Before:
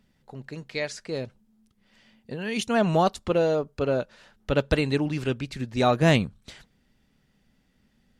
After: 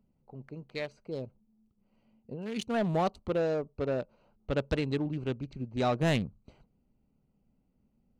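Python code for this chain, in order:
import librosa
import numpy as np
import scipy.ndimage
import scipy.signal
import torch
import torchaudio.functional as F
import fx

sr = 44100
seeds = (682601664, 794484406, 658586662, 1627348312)

y = fx.wiener(x, sr, points=25)
y = fx.lowpass(y, sr, hz=7700.0, slope=24, at=(3.4, 5.98))
y = 10.0 ** (-14.5 / 20.0) * np.tanh(y / 10.0 ** (-14.5 / 20.0))
y = y * librosa.db_to_amplitude(-5.0)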